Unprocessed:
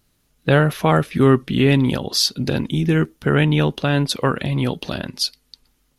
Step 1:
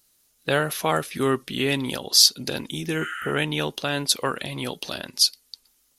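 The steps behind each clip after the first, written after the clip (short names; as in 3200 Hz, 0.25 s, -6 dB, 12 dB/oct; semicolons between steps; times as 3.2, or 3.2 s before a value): low shelf 490 Hz -3.5 dB; spectral repair 3.04–3.29, 1200–11000 Hz; tone controls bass -8 dB, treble +11 dB; gain -4 dB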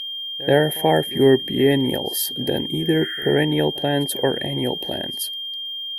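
EQ curve 240 Hz 0 dB, 360 Hz +4 dB, 590 Hz 0 dB, 870 Hz +1 dB, 1200 Hz -29 dB, 1800 Hz +1 dB, 2600 Hz -19 dB, 5700 Hz -27 dB, 15000 Hz +5 dB; whine 3200 Hz -33 dBFS; pre-echo 83 ms -20.5 dB; gain +6.5 dB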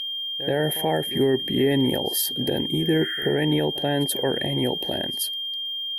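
limiter -12 dBFS, peak gain reduction 9.5 dB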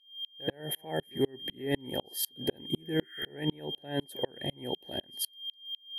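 dB-ramp tremolo swelling 4 Hz, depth 35 dB; gain -3 dB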